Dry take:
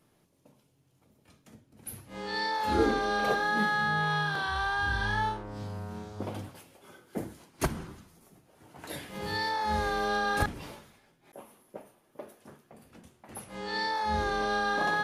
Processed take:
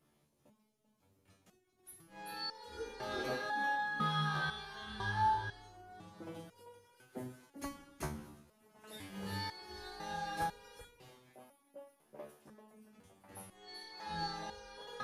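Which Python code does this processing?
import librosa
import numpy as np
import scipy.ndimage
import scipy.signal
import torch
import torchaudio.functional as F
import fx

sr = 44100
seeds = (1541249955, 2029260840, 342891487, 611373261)

y = x + 10.0 ** (-5.0 / 20.0) * np.pad(x, (int(389 * sr / 1000.0), 0))[:len(x)]
y = fx.resonator_held(y, sr, hz=2.0, low_hz=74.0, high_hz=480.0)
y = F.gain(torch.from_numpy(y), 2.0).numpy()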